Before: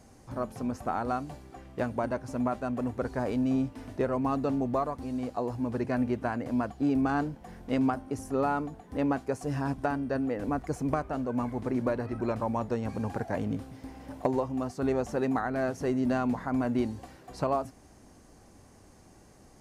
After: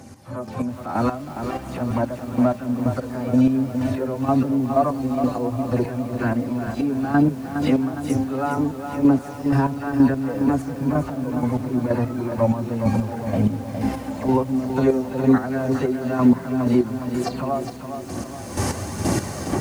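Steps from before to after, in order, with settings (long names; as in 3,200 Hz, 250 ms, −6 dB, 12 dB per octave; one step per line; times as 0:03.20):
every frequency bin delayed by itself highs early, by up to 153 ms
camcorder AGC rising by 24 dB per second
high-pass filter 81 Hz 24 dB per octave
harmonic and percussive parts rebalanced percussive −13 dB
square-wave tremolo 2.1 Hz, depth 65%, duty 30%
phase shifter 1.1 Hz, delay 2.6 ms, feedback 34%
tape delay 677 ms, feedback 54%, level −18 dB, low-pass 2,400 Hz
boost into a limiter +20 dB
feedback echo at a low word length 412 ms, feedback 55%, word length 6 bits, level −7.5 dB
level −6.5 dB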